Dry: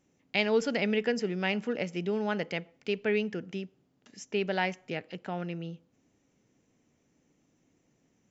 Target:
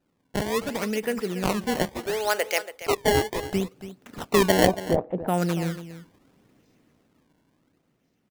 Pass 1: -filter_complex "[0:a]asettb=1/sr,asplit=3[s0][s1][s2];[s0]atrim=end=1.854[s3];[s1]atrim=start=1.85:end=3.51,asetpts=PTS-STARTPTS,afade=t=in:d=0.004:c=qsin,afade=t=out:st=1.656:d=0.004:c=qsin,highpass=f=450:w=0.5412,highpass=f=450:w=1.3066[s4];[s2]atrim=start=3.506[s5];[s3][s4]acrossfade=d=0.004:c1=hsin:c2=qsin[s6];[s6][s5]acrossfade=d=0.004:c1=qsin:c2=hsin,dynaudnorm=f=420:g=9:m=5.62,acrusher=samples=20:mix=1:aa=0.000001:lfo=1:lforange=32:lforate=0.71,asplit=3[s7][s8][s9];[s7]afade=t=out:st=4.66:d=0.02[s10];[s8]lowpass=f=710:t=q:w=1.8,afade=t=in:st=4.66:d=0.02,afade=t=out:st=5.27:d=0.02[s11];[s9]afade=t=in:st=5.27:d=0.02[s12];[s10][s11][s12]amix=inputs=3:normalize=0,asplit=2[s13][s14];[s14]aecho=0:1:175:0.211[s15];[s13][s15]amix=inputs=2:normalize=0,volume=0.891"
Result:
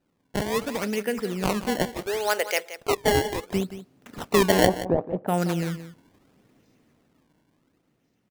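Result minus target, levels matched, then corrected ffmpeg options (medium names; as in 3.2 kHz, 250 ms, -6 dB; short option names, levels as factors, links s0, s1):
echo 107 ms early
-filter_complex "[0:a]asettb=1/sr,asplit=3[s0][s1][s2];[s0]atrim=end=1.854[s3];[s1]atrim=start=1.85:end=3.51,asetpts=PTS-STARTPTS,afade=t=in:d=0.004:c=qsin,afade=t=out:st=1.656:d=0.004:c=qsin,highpass=f=450:w=0.5412,highpass=f=450:w=1.3066[s4];[s2]atrim=start=3.506[s5];[s3][s4]acrossfade=d=0.004:c1=hsin:c2=qsin[s6];[s6][s5]acrossfade=d=0.004:c1=qsin:c2=hsin,dynaudnorm=f=420:g=9:m=5.62,acrusher=samples=20:mix=1:aa=0.000001:lfo=1:lforange=32:lforate=0.71,asplit=3[s7][s8][s9];[s7]afade=t=out:st=4.66:d=0.02[s10];[s8]lowpass=f=710:t=q:w=1.8,afade=t=in:st=4.66:d=0.02,afade=t=out:st=5.27:d=0.02[s11];[s9]afade=t=in:st=5.27:d=0.02[s12];[s10][s11][s12]amix=inputs=3:normalize=0,asplit=2[s13][s14];[s14]aecho=0:1:282:0.211[s15];[s13][s15]amix=inputs=2:normalize=0,volume=0.891"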